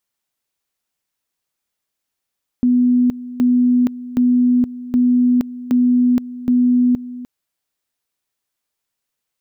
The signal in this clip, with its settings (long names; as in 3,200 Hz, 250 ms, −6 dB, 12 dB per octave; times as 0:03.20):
tone at two levels in turn 247 Hz −10.5 dBFS, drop 16.5 dB, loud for 0.47 s, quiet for 0.30 s, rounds 6